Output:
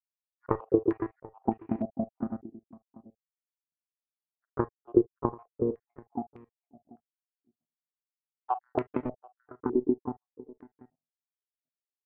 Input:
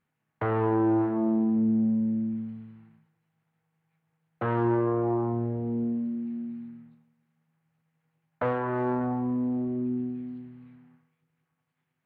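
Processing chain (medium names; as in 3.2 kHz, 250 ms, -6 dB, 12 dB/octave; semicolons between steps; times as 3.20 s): random holes in the spectrogram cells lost 83%; level-controlled noise filter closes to 320 Hz, open at -29 dBFS; peaking EQ 240 Hz +5 dB 2.4 oct; comb 2.7 ms, depth 37%; compression 10:1, threshold -29 dBFS, peak gain reduction 13.5 dB; power-law waveshaper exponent 2; harmony voices +3 st -14 dB; delay 736 ms -19 dB; reverberation, pre-delay 35 ms, DRR 15 dB; step-sequenced low-pass 3.3 Hz 370–2400 Hz; trim +8.5 dB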